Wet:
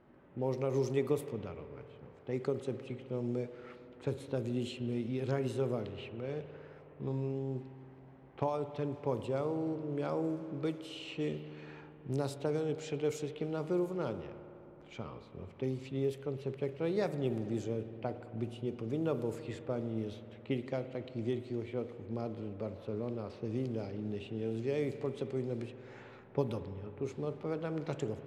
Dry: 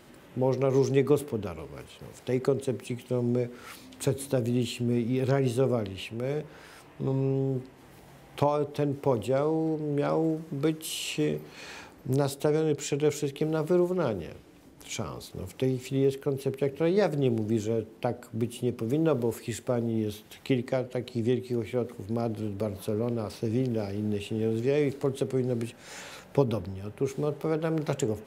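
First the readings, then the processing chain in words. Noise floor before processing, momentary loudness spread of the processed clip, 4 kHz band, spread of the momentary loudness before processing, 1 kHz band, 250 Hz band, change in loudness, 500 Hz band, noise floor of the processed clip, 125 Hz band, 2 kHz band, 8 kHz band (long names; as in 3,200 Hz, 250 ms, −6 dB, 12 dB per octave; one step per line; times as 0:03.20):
−52 dBFS, 14 LU, −10.5 dB, 12 LU, −8.0 dB, −8.0 dB, −8.0 dB, −8.0 dB, −55 dBFS, −8.0 dB, −8.5 dB, −15.0 dB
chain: spring reverb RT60 3.5 s, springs 53 ms, chirp 65 ms, DRR 10.5 dB
low-pass that shuts in the quiet parts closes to 1,400 Hz, open at −20 dBFS
level −8.5 dB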